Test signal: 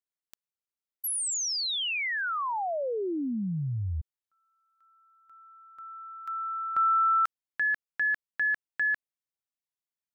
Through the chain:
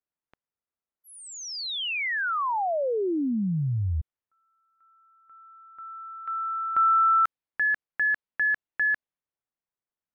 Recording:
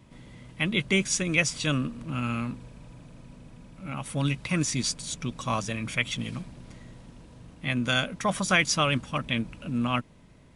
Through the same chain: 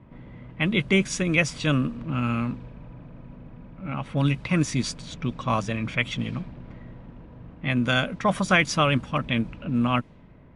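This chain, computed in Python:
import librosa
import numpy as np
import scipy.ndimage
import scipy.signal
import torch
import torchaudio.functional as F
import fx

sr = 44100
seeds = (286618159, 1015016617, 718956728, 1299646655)

y = fx.env_lowpass(x, sr, base_hz=1900.0, full_db=-23.0)
y = fx.peak_eq(y, sr, hz=8300.0, db=-10.0, octaves=2.2)
y = y * 10.0 ** (4.5 / 20.0)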